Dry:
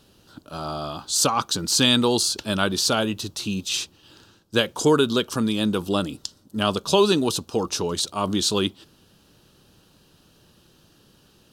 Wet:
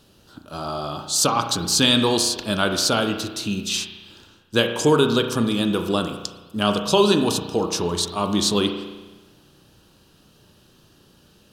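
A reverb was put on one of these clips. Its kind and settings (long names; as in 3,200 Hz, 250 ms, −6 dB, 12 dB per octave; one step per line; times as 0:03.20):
spring reverb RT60 1.2 s, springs 34 ms, chirp 80 ms, DRR 5.5 dB
level +1 dB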